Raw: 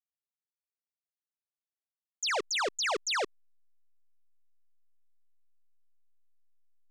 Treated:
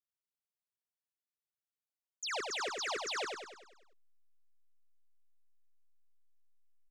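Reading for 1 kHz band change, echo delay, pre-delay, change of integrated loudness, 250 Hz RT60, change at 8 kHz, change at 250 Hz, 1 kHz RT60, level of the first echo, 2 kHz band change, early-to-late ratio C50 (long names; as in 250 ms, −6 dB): −6.0 dB, 98 ms, no reverb audible, −6.5 dB, no reverb audible, −6.0 dB, −6.0 dB, no reverb audible, −4.0 dB, −6.0 dB, no reverb audible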